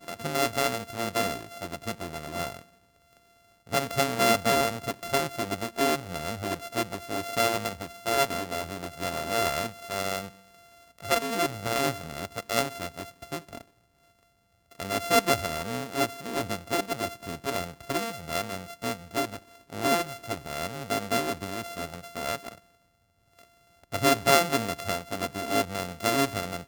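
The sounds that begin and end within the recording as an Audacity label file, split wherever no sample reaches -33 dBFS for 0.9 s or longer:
3.720000	13.610000	sound
14.800000	22.520000	sound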